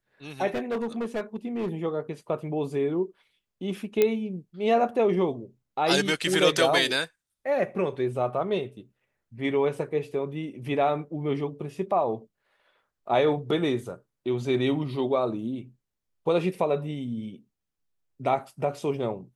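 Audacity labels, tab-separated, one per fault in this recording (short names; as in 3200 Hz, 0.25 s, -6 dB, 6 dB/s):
0.540000	1.720000	clipped -25 dBFS
4.020000	4.020000	pop -9 dBFS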